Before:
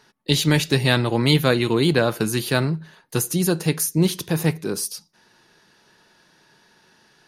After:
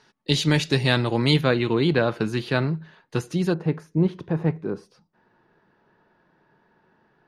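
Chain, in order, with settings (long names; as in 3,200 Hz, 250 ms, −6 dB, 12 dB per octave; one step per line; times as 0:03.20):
low-pass filter 6,700 Hz 12 dB per octave, from 0:01.41 3,400 Hz, from 0:03.54 1,300 Hz
level −2 dB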